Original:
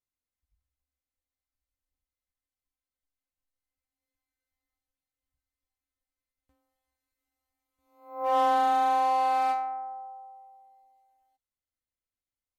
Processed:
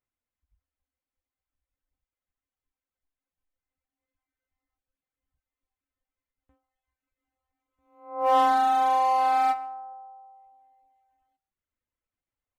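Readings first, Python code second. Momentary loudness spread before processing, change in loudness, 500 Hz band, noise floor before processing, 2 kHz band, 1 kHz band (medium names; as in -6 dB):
18 LU, +3.0 dB, +1.5 dB, under -85 dBFS, +2.5 dB, +2.5 dB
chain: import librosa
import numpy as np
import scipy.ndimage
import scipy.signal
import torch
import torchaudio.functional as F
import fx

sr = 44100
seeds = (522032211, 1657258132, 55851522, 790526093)

p1 = fx.wiener(x, sr, points=9)
p2 = p1 + 10.0 ** (-17.0 / 20.0) * np.pad(p1, (int(140 * sr / 1000.0), 0))[:len(p1)]
p3 = fx.rider(p2, sr, range_db=3, speed_s=0.5)
p4 = p2 + (p3 * 10.0 ** (0.5 / 20.0))
y = fx.dereverb_blind(p4, sr, rt60_s=0.87)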